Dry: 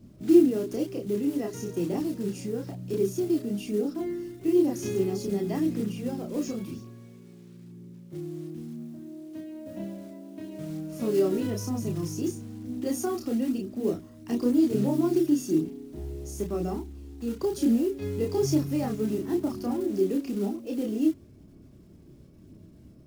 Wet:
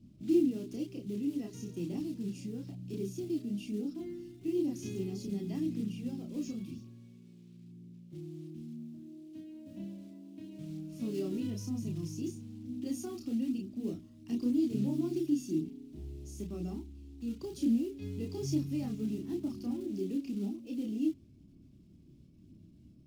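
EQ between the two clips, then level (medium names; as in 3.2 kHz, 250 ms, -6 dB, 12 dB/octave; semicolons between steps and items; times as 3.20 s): low-pass 3.9 kHz 6 dB/octave; bass shelf 140 Hz -3.5 dB; high-order bell 870 Hz -12.5 dB 2.6 oct; -4.0 dB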